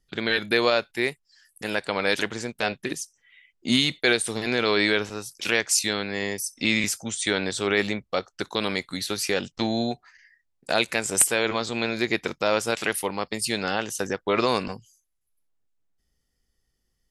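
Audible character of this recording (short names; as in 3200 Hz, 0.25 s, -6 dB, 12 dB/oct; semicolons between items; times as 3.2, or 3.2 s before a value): noise floor -75 dBFS; spectral tilt -2.5 dB/oct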